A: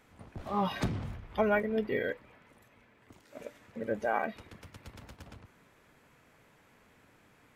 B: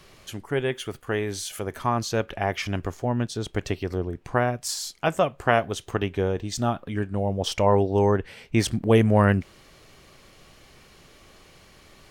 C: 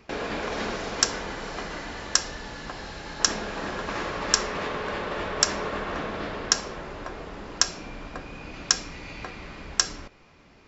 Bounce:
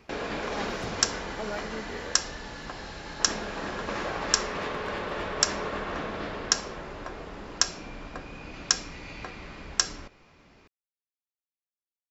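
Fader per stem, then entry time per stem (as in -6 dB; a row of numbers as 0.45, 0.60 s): -8.5 dB, off, -2.0 dB; 0.00 s, off, 0.00 s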